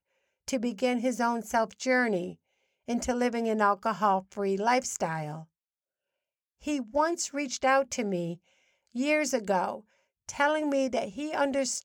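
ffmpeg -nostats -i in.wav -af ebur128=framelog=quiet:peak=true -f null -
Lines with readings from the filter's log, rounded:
Integrated loudness:
  I:         -28.6 LUFS
  Threshold: -39.3 LUFS
Loudness range:
  LRA:         2.5 LU
  Threshold: -49.8 LUFS
  LRA low:   -31.2 LUFS
  LRA high:  -28.6 LUFS
True peak:
  Peak:      -12.1 dBFS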